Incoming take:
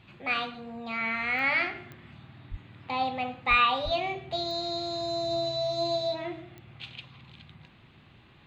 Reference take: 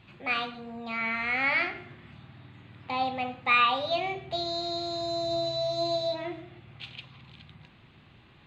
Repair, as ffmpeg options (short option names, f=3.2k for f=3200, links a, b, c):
-filter_complex "[0:a]adeclick=t=4,asplit=3[a][b][c];[a]afade=t=out:st=2.5:d=0.02[d];[b]highpass=f=140:w=0.5412,highpass=f=140:w=1.3066,afade=t=in:st=2.5:d=0.02,afade=t=out:st=2.62:d=0.02[e];[c]afade=t=in:st=2.62:d=0.02[f];[d][e][f]amix=inputs=3:normalize=0,asplit=3[g][h][i];[g]afade=t=out:st=3.49:d=0.02[j];[h]highpass=f=140:w=0.5412,highpass=f=140:w=1.3066,afade=t=in:st=3.49:d=0.02,afade=t=out:st=3.61:d=0.02[k];[i]afade=t=in:st=3.61:d=0.02[l];[j][k][l]amix=inputs=3:normalize=0,asplit=3[m][n][o];[m]afade=t=out:st=3.84:d=0.02[p];[n]highpass=f=140:w=0.5412,highpass=f=140:w=1.3066,afade=t=in:st=3.84:d=0.02,afade=t=out:st=3.96:d=0.02[q];[o]afade=t=in:st=3.96:d=0.02[r];[p][q][r]amix=inputs=3:normalize=0"